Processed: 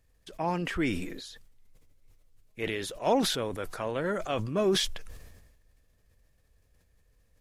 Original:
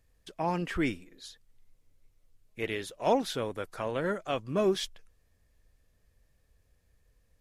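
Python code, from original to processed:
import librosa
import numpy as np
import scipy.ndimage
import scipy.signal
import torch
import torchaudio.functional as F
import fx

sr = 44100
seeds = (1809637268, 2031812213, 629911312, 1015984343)

y = fx.sustainer(x, sr, db_per_s=45.0)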